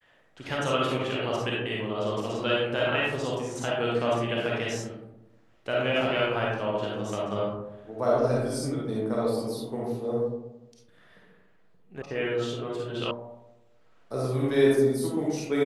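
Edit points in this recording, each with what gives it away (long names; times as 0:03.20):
0:12.02: cut off before it has died away
0:13.11: cut off before it has died away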